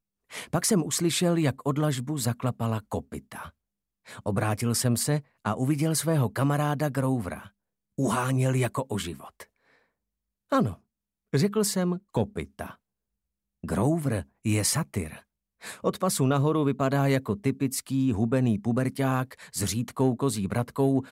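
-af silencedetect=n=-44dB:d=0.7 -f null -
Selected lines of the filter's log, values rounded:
silence_start: 9.44
silence_end: 10.52 | silence_duration: 1.08
silence_start: 12.74
silence_end: 13.64 | silence_duration: 0.90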